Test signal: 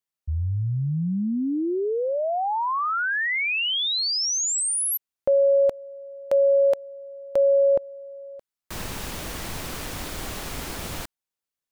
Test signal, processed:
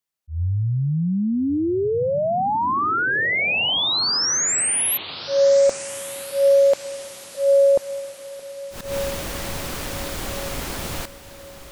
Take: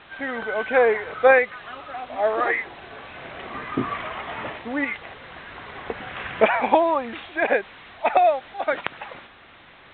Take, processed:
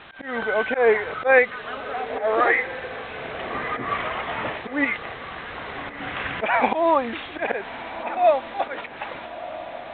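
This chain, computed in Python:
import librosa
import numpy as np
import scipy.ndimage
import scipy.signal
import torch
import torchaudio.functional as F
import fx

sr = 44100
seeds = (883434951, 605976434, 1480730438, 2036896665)

y = fx.auto_swell(x, sr, attack_ms=150.0)
y = fx.echo_diffused(y, sr, ms=1307, feedback_pct=47, wet_db=-13.5)
y = F.gain(torch.from_numpy(y), 3.5).numpy()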